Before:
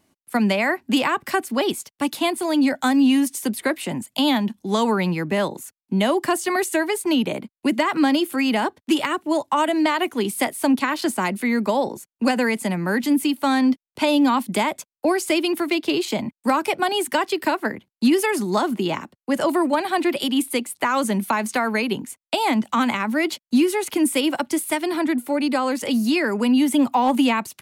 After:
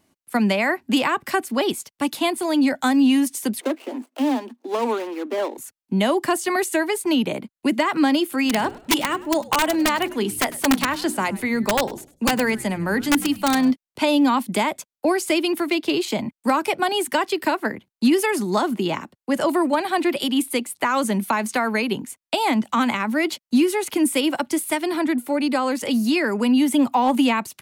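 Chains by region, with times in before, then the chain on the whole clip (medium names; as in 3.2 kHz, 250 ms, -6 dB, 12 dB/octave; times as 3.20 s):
3.61–5.58 s: median filter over 25 samples + steep high-pass 240 Hz 96 dB/octave + upward compressor, threshold -43 dBFS
8.44–13.71 s: hum notches 60/120/180/240/300/360/420 Hz + integer overflow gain 11.5 dB + frequency-shifting echo 101 ms, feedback 33%, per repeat -92 Hz, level -19.5 dB
whole clip: none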